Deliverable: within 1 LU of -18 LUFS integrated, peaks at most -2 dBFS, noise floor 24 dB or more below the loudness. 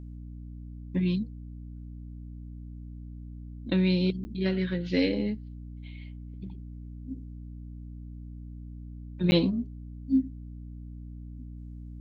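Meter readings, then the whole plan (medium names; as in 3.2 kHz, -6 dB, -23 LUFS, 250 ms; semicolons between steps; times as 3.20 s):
dropouts 2; longest dropout 10 ms; hum 60 Hz; highest harmonic 300 Hz; hum level -39 dBFS; loudness -29.0 LUFS; peak level -11.0 dBFS; loudness target -18.0 LUFS
-> interpolate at 4.24/9.31 s, 10 ms; de-hum 60 Hz, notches 5; trim +11 dB; peak limiter -2 dBFS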